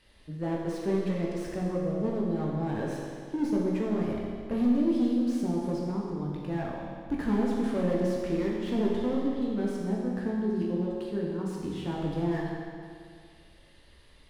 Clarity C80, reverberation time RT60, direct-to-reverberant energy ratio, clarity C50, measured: 1.5 dB, 2.2 s, -3.5 dB, 0.0 dB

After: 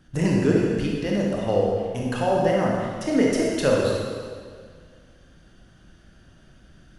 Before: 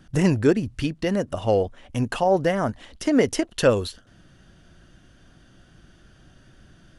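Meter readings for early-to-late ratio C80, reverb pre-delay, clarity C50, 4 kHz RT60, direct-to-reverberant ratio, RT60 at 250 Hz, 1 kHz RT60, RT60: 1.0 dB, 22 ms, -1.0 dB, 1.6 s, -3.0 dB, 2.0 s, 2.0 s, 2.0 s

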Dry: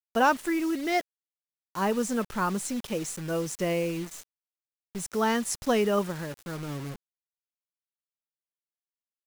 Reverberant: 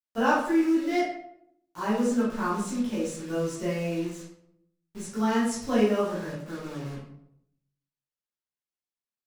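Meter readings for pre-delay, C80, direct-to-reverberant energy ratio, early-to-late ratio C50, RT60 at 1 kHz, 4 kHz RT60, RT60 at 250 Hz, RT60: 9 ms, 6.0 dB, -10.0 dB, 1.5 dB, 0.65 s, 0.45 s, 0.85 s, 0.75 s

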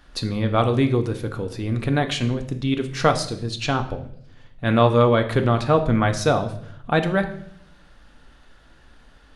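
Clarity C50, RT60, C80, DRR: 12.0 dB, 0.65 s, 15.5 dB, 6.0 dB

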